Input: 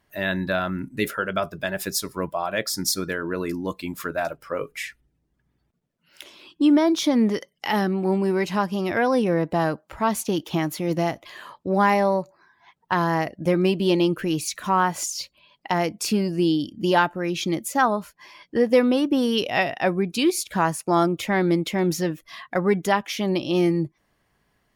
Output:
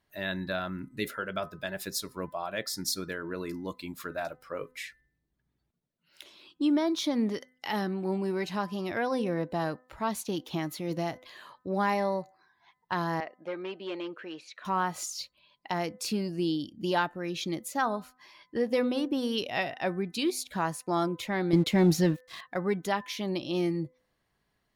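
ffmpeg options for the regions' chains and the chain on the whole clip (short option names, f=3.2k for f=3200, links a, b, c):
-filter_complex "[0:a]asettb=1/sr,asplit=3[a][b][c];[a]atrim=end=13.204[d];[b]atrim=start=13.2:end=14.65,asetpts=PTS-STARTPTS,afade=t=in:d=0.004:c=qsin,afade=t=out:st=1.446:d=0.004:c=qsin,asoftclip=type=hard:threshold=-14.5dB,highpass=520,lowpass=2.5k[e];[c]atrim=start=14.646[f];[d][e]acrossfade=d=0.004:c1=hsin:c2=qsin[g];[g][f]acrossfade=d=0.004:c1=qsin:c2=hsin,asettb=1/sr,asplit=3[h][i][j];[h]atrim=end=21.534[k];[i]atrim=start=21.53:end=22.41,asetpts=PTS-STARTPTS,afade=t=in:d=0.004:c=qsin,afade=t=out:st=0.876:d=0.004:c=qsin,bass=f=250:g=6,treble=f=4k:g=-2,acontrast=86,aeval=exprs='sgn(val(0))*max(abs(val(0))-0.0106,0)':c=same[l];[j]atrim=start=22.406[m];[k][l]acrossfade=d=0.004:c1=hsin:c2=qsin[n];[n][m]acrossfade=d=0.004:c1=qsin:c2=hsin,equalizer=f=4k:w=4.1:g=6,bandreject=f=253.4:t=h:w=4,bandreject=f=506.8:t=h:w=4,bandreject=f=760.2:t=h:w=4,bandreject=f=1.0136k:t=h:w=4,bandreject=f=1.267k:t=h:w=4,bandreject=f=1.5204k:t=h:w=4,bandreject=f=1.7738k:t=h:w=4,bandreject=f=2.0272k:t=h:w=4,volume=-8.5dB"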